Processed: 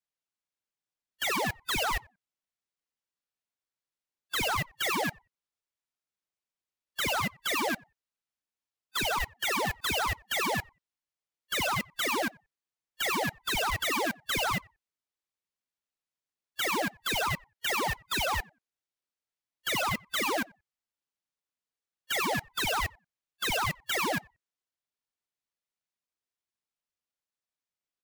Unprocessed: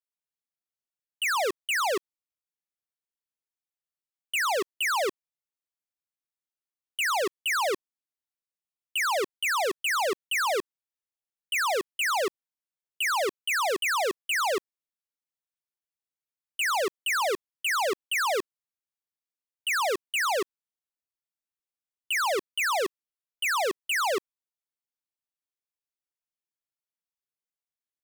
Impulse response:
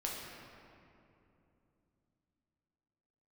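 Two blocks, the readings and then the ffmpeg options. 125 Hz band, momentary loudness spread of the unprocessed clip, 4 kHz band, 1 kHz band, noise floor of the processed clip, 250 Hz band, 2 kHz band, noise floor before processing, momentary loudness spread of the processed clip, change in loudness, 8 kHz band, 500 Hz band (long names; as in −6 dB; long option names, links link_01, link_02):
can't be measured, 5 LU, −1.0 dB, −3.5 dB, below −85 dBFS, +3.5 dB, −3.5 dB, below −85 dBFS, 6 LU, −3.0 dB, −3.0 dB, −6.5 dB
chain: -filter_complex "[0:a]afftfilt=real='real(if(lt(b,1008),b+24*(1-2*mod(floor(b/24),2)),b),0)':imag='imag(if(lt(b,1008),b+24*(1-2*mod(floor(b/24),2)),b),0)':win_size=2048:overlap=0.75,acrusher=samples=3:mix=1:aa=0.000001,asplit=2[link_01][link_02];[link_02]adelay=90,lowpass=frequency=990:poles=1,volume=-22.5dB,asplit=2[link_03][link_04];[link_04]adelay=90,lowpass=frequency=990:poles=1,volume=0.17[link_05];[link_03][link_05]amix=inputs=2:normalize=0[link_06];[link_01][link_06]amix=inputs=2:normalize=0,aeval=exprs='val(0)*sin(2*PI*890*n/s+890*0.25/1.1*sin(2*PI*1.1*n/s))':channel_layout=same"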